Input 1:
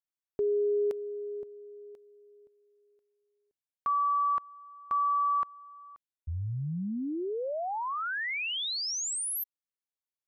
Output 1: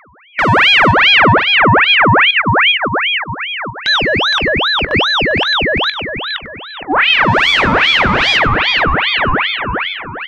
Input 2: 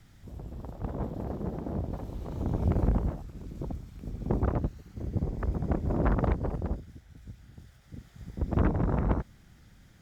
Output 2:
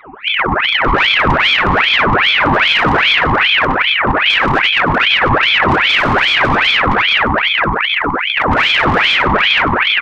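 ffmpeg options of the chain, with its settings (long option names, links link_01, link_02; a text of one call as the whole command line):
ffmpeg -i in.wav -filter_complex "[0:a]afftdn=noise_reduction=17:noise_floor=-51,lowshelf=frequency=780:width_type=q:width=3:gain=13,afftfilt=real='re*between(b*sr/4096,230,2300)':imag='im*between(b*sr/4096,230,2300)':win_size=4096:overlap=0.75,asplit=2[link_01][link_02];[link_02]adelay=465,lowpass=frequency=1500:poles=1,volume=-6dB,asplit=2[link_03][link_04];[link_04]adelay=465,lowpass=frequency=1500:poles=1,volume=0.48,asplit=2[link_05][link_06];[link_06]adelay=465,lowpass=frequency=1500:poles=1,volume=0.48,asplit=2[link_07][link_08];[link_08]adelay=465,lowpass=frequency=1500:poles=1,volume=0.48,asplit=2[link_09][link_10];[link_10]adelay=465,lowpass=frequency=1500:poles=1,volume=0.48,asplit=2[link_11][link_12];[link_12]adelay=465,lowpass=frequency=1500:poles=1,volume=0.48[link_13];[link_03][link_05][link_07][link_09][link_11][link_13]amix=inputs=6:normalize=0[link_14];[link_01][link_14]amix=inputs=2:normalize=0,asplit=2[link_15][link_16];[link_16]highpass=frequency=720:poles=1,volume=36dB,asoftclip=type=tanh:threshold=0dB[link_17];[link_15][link_17]amix=inputs=2:normalize=0,lowpass=frequency=1400:poles=1,volume=-6dB,acompressor=threshold=-14dB:ratio=16:attack=0.13:release=170:knee=1:detection=peak,aeval=exprs='val(0)+0.00447*sin(2*PI*450*n/s)':channel_layout=same,asplit=2[link_18][link_19];[link_19]adelay=20,volume=-13dB[link_20];[link_18][link_20]amix=inputs=2:normalize=0,asplit=2[link_21][link_22];[link_22]aecho=0:1:97|194|291|388:0.335|0.124|0.0459|0.017[link_23];[link_21][link_23]amix=inputs=2:normalize=0,aeval=exprs='val(0)*sin(2*PI*1700*n/s+1700*0.7/2.5*sin(2*PI*2.5*n/s))':channel_layout=same,volume=7dB" out.wav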